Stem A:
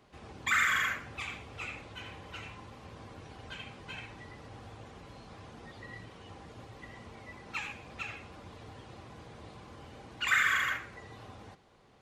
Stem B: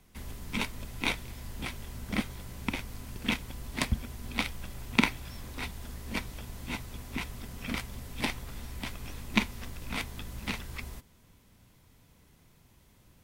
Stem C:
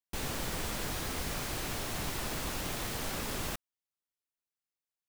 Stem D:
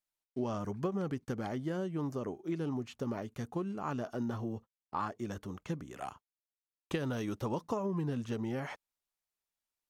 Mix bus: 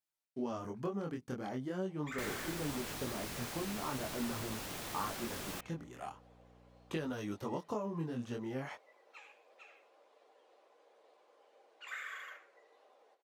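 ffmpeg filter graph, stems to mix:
ffmpeg -i stem1.wav -i stem2.wav -i stem3.wav -i stem4.wav -filter_complex "[0:a]highpass=frequency=390:width=0.5412,highpass=frequency=390:width=1.3066,equalizer=frequency=550:width_type=o:width=0.95:gain=10,flanger=delay=7.3:depth=9.8:regen=-41:speed=1.5:shape=triangular,adelay=1600,volume=-14.5dB[link_01];[2:a]aeval=exprs='val(0)+0.00282*(sin(2*PI*60*n/s)+sin(2*PI*2*60*n/s)/2+sin(2*PI*3*60*n/s)/3+sin(2*PI*4*60*n/s)/4+sin(2*PI*5*60*n/s)/5)':channel_layout=same,adelay=2050,volume=-6dB[link_02];[3:a]flanger=delay=19:depth=5.8:speed=0.43,volume=0dB[link_03];[link_01][link_02][link_03]amix=inputs=3:normalize=0,lowshelf=frequency=73:gain=-12" out.wav

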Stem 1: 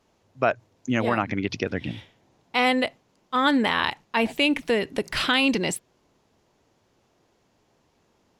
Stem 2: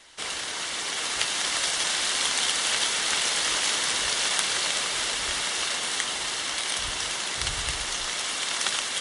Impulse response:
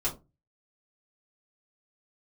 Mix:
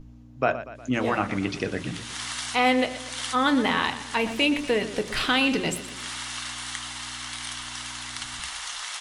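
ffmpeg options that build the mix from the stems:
-filter_complex "[0:a]aeval=exprs='val(0)+0.0112*(sin(2*PI*60*n/s)+sin(2*PI*2*60*n/s)/2+sin(2*PI*3*60*n/s)/3+sin(2*PI*4*60*n/s)/4+sin(2*PI*5*60*n/s)/5)':channel_layout=same,volume=-3.5dB,asplit=4[link_01][link_02][link_03][link_04];[link_02]volume=-11.5dB[link_05];[link_03]volume=-11.5dB[link_06];[1:a]lowshelf=frequency=650:width_type=q:width=1.5:gain=-12,adelay=750,volume=-5.5dB,asplit=2[link_07][link_08];[link_08]volume=-23.5dB[link_09];[link_04]apad=whole_len=430395[link_10];[link_07][link_10]sidechaincompress=threshold=-41dB:ratio=8:attack=9.1:release=329[link_11];[2:a]atrim=start_sample=2205[link_12];[link_05][link_09]amix=inputs=2:normalize=0[link_13];[link_13][link_12]afir=irnorm=-1:irlink=0[link_14];[link_06]aecho=0:1:120|240|360|480|600|720|840|960:1|0.54|0.292|0.157|0.085|0.0459|0.0248|0.0134[link_15];[link_01][link_11][link_14][link_15]amix=inputs=4:normalize=0"

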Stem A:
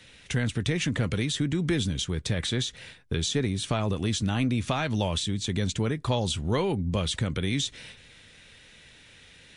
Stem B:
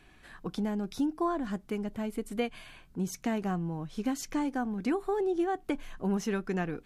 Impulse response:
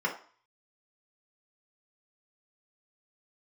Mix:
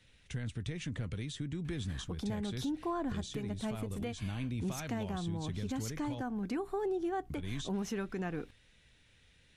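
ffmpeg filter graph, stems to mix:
-filter_complex "[0:a]lowshelf=frequency=110:gain=12,volume=-14.5dB,asplit=3[link_01][link_02][link_03];[link_01]atrim=end=6.22,asetpts=PTS-STARTPTS,afade=type=out:start_time=6.216:duration=0.004:curve=hsin[link_04];[link_02]atrim=start=6.22:end=7.3,asetpts=PTS-STARTPTS,volume=0[link_05];[link_03]atrim=start=7.3,asetpts=PTS-STARTPTS,afade=type=in:duration=0.004:curve=hsin[link_06];[link_04][link_05][link_06]concat=n=3:v=0:a=1[link_07];[1:a]aeval=exprs='val(0)+0.00141*(sin(2*PI*60*n/s)+sin(2*PI*2*60*n/s)/2+sin(2*PI*3*60*n/s)/3+sin(2*PI*4*60*n/s)/4+sin(2*PI*5*60*n/s)/5)':channel_layout=same,adelay=1650,volume=-1.5dB[link_08];[link_07][link_08]amix=inputs=2:normalize=0,alimiter=level_in=4dB:limit=-24dB:level=0:latency=1:release=162,volume=-4dB"

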